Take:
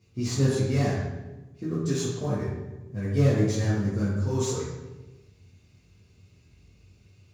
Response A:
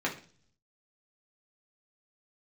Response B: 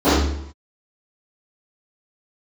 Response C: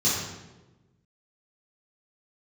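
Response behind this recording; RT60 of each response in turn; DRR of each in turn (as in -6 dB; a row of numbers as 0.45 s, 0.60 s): C; 0.45 s, 0.75 s, 1.1 s; -4.0 dB, -20.5 dB, -9.5 dB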